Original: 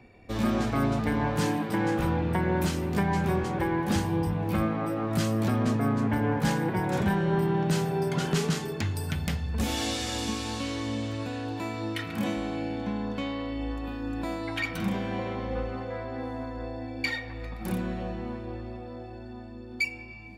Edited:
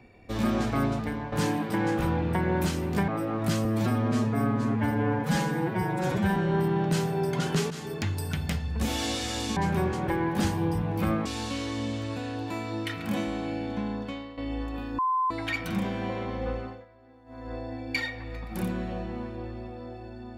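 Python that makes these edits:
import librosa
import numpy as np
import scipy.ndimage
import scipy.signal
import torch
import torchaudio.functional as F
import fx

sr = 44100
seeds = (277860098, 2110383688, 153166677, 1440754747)

y = fx.edit(x, sr, fx.fade_out_to(start_s=0.8, length_s=0.52, floor_db=-11.0),
    fx.move(start_s=3.08, length_s=1.69, to_s=10.35),
    fx.stretch_span(start_s=5.34, length_s=1.81, factor=1.5),
    fx.fade_in_from(start_s=8.49, length_s=0.32, curve='qsin', floor_db=-15.0),
    fx.fade_out_to(start_s=13.0, length_s=0.47, floor_db=-13.0),
    fx.bleep(start_s=14.08, length_s=0.32, hz=1030.0, db=-22.5),
    fx.fade_down_up(start_s=15.67, length_s=0.96, db=-20.5, fade_s=0.28), tone=tone)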